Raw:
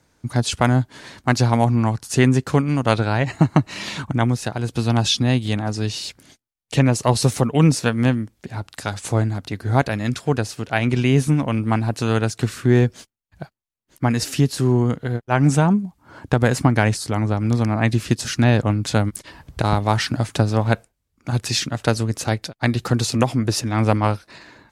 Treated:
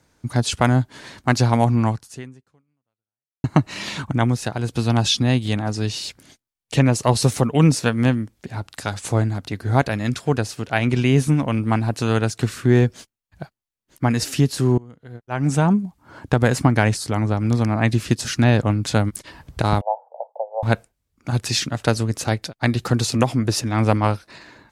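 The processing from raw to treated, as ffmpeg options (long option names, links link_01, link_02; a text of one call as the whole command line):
ffmpeg -i in.wav -filter_complex "[0:a]asettb=1/sr,asplit=3[link_01][link_02][link_03];[link_01]atrim=end=19.814[link_04];[link_02]atrim=start=19.81:end=20.63,asetpts=PTS-STARTPTS,afade=type=in:duration=0.004:curve=qsin,afade=type=out:start_time=0.816:duration=0.004:curve=qsin,asuperpass=centerf=670:order=12:qfactor=1.6[link_05];[link_03]atrim=start=20.626[link_06];[link_04][link_05]acrossfade=duration=0.004:curve1=hsin:curve2=qsin[link_07];[link_07][link_06]acrossfade=duration=0.004:curve1=qsin:curve2=hsin,asplit=3[link_08][link_09][link_10];[link_08]atrim=end=3.44,asetpts=PTS-STARTPTS,afade=type=out:start_time=1.91:duration=1.53:curve=exp[link_11];[link_09]atrim=start=3.44:end=14.78,asetpts=PTS-STARTPTS,afade=type=in:duration=0.004:curve=hsin,afade=type=out:start_time=11.336:duration=0.004:curve=hsin:silence=0.0630957[link_12];[link_10]atrim=start=14.78,asetpts=PTS-STARTPTS,afade=type=in:duration=0.9:curve=qua:silence=0.0630957[link_13];[link_11][link_12][link_13]concat=n=3:v=0:a=1" out.wav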